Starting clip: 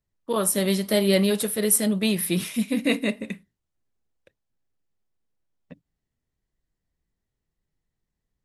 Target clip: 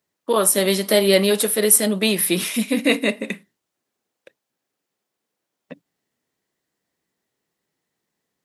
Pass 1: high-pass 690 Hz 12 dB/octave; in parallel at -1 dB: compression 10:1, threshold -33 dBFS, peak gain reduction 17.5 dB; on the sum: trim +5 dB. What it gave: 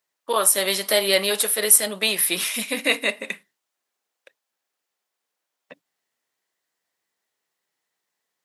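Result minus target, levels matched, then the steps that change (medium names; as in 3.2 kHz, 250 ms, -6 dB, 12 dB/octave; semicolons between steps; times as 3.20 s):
250 Hz band -10.5 dB
change: high-pass 280 Hz 12 dB/octave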